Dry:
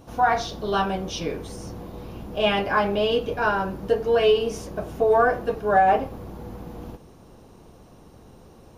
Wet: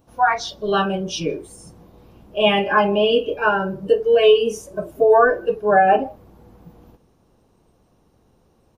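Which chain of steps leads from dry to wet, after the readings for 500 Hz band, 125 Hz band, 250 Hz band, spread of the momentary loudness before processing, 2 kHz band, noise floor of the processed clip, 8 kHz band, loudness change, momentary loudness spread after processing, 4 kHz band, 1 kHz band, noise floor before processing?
+5.0 dB, +1.0 dB, +3.5 dB, 19 LU, +4.5 dB, -60 dBFS, no reading, +4.5 dB, 13 LU, +5.0 dB, +3.0 dB, -50 dBFS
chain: delay 157 ms -21 dB; spectral noise reduction 16 dB; trim +5.5 dB

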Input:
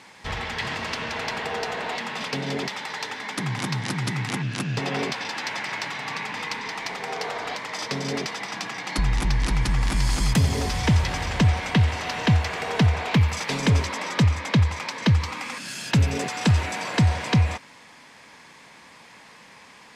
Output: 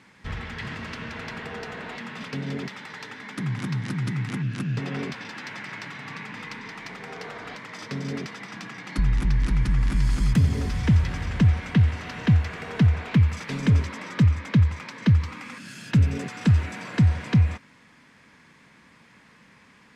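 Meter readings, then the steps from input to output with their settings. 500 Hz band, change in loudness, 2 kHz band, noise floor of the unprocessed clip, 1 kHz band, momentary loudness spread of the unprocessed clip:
-7.0 dB, 0.0 dB, -6.0 dB, -49 dBFS, -9.0 dB, 9 LU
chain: FFT filter 220 Hz 0 dB, 390 Hz -6 dB, 820 Hz -13 dB, 1.4 kHz -5 dB, 4.5 kHz -12 dB; trim +1 dB

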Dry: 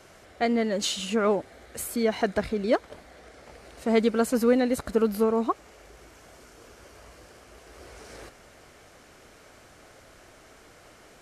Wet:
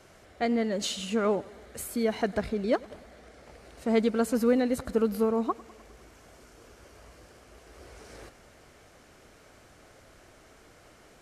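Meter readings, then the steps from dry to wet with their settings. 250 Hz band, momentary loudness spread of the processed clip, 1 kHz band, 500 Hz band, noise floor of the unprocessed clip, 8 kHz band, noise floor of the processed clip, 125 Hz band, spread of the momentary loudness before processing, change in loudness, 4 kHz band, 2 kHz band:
-1.5 dB, 12 LU, -3.5 dB, -3.0 dB, -53 dBFS, -4.0 dB, -56 dBFS, -1.5 dB, 12 LU, -2.5 dB, -4.0 dB, -4.0 dB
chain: bass shelf 330 Hz +3.5 dB; modulated delay 101 ms, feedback 64%, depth 53 cents, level -22.5 dB; trim -4 dB

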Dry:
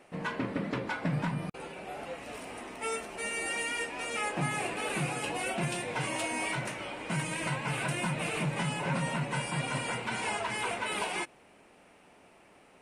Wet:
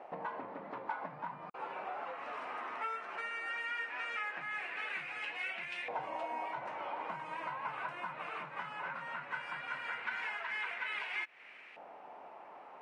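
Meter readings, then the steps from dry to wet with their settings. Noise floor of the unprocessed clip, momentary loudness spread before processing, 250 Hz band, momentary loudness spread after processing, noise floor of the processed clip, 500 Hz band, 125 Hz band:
-59 dBFS, 9 LU, -19.5 dB, 8 LU, -54 dBFS, -9.5 dB, -26.0 dB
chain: low-pass 5.8 kHz 12 dB/octave; compression 10:1, threshold -43 dBFS, peak gain reduction 16.5 dB; LFO band-pass saw up 0.17 Hz 780–2200 Hz; trim +13 dB

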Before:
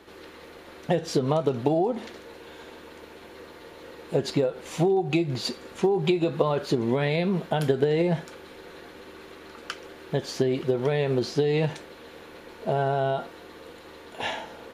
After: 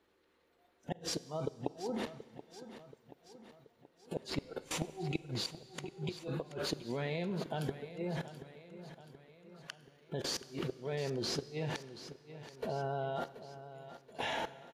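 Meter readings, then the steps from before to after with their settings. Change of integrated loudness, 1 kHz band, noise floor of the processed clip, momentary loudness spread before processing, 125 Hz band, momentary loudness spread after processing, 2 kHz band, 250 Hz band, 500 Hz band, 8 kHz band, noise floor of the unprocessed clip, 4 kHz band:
-13.5 dB, -12.0 dB, -72 dBFS, 21 LU, -12.5 dB, 16 LU, -10.0 dB, -14.0 dB, -15.5 dB, -3.0 dB, -47 dBFS, -6.0 dB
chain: level held to a coarse grid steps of 20 dB; inverted gate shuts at -28 dBFS, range -25 dB; spectral noise reduction 17 dB; on a send: feedback delay 729 ms, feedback 53%, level -13.5 dB; on the sum: Schroeder reverb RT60 2 s, combs from 32 ms, DRR 17 dB; trim +3.5 dB

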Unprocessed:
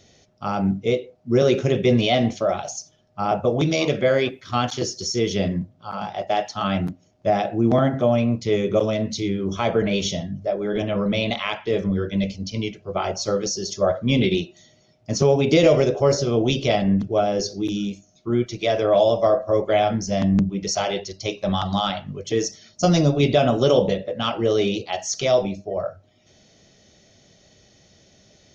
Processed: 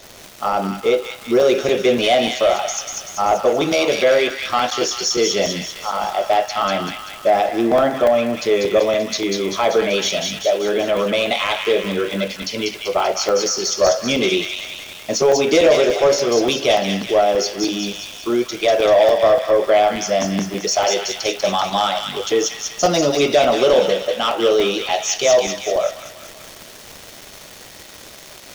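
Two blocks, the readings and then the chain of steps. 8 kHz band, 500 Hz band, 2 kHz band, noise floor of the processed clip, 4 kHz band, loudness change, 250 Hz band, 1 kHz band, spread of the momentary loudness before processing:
no reading, +5.0 dB, +7.0 dB, -40 dBFS, +7.0 dB, +4.0 dB, -1.0 dB, +6.5 dB, 10 LU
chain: high-pass 540 Hz 12 dB/octave; crackle 510 per s -37 dBFS; in parallel at -0.5 dB: compression, threshold -34 dBFS, peak gain reduction 18 dB; on the sum: saturation -15 dBFS, distortion -16 dB; tilt shelf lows +3.5 dB, about 730 Hz; on a send: feedback echo behind a high-pass 193 ms, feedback 57%, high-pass 1.7 kHz, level -3 dB; on the sum: crackling interface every 0.29 s, samples 128, zero, from 0.53 s; trim +7.5 dB

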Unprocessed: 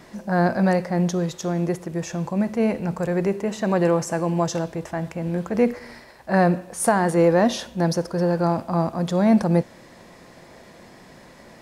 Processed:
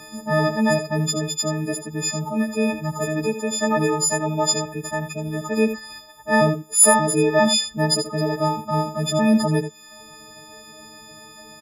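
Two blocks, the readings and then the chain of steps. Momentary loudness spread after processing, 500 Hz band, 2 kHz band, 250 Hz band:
10 LU, 0.0 dB, +4.5 dB, -1.0 dB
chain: partials quantised in pitch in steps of 6 st; reverb removal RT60 0.69 s; delay 81 ms -10 dB

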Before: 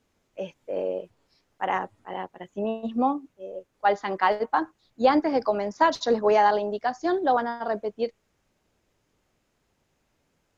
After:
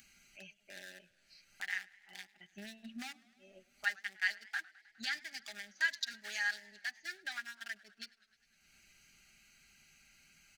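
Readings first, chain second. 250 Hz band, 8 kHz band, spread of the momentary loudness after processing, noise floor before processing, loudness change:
-26.0 dB, no reading, 19 LU, -73 dBFS, -14.5 dB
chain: local Wiener filter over 25 samples; elliptic high-pass 1.7 kHz, stop band 40 dB; comb 5 ms, depth 50%; upward compressor, threshold -38 dBFS; peaking EQ 2.8 kHz -11.5 dB 1.7 oct; modulated delay 103 ms, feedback 76%, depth 129 cents, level -24 dB; trim +7 dB

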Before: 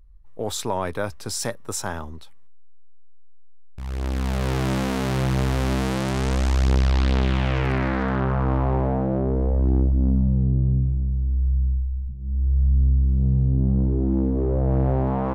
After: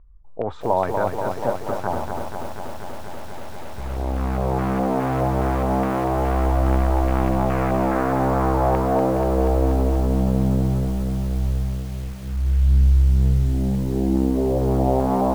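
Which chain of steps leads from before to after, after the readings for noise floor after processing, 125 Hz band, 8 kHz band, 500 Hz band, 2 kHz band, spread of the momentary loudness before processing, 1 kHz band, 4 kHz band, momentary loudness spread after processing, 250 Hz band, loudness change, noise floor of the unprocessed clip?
-31 dBFS, -0.5 dB, -8.5 dB, +6.0 dB, -1.5 dB, 9 LU, +7.5 dB, -7.5 dB, 13 LU, +2.5 dB, +1.5 dB, -37 dBFS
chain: resonant high shelf 1.6 kHz -10.5 dB, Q 1.5; LFO low-pass square 2.4 Hz 750–2300 Hz; bit-crushed delay 241 ms, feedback 80%, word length 7-bit, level -5 dB

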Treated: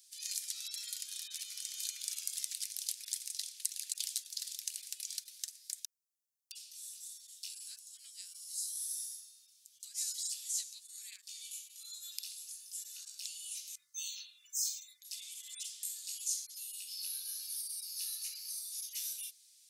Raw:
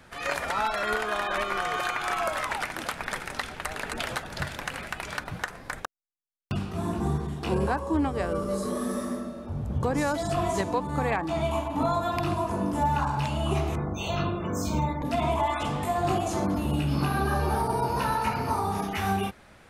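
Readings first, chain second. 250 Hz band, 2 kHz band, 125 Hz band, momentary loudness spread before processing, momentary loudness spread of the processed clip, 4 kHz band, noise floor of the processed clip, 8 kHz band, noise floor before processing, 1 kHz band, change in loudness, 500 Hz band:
under -40 dB, -26.5 dB, under -40 dB, 8 LU, 11 LU, -4.0 dB, -67 dBFS, +6.0 dB, -53 dBFS, under -40 dB, -11.0 dB, under -40 dB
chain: inverse Chebyshev high-pass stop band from 860 Hz, stop band 80 dB; trim +6 dB

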